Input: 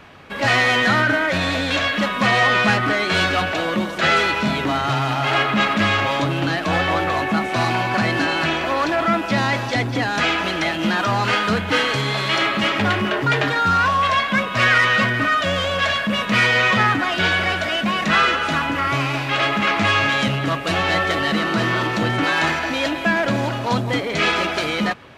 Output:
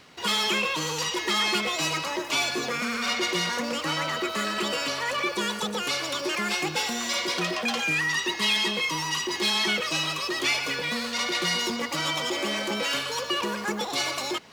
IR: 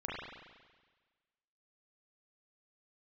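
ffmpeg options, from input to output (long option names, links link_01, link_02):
-af "highshelf=frequency=11000:gain=10,areverse,acompressor=mode=upward:threshold=-38dB:ratio=2.5,areverse,asetrate=76440,aresample=44100,volume=-8.5dB"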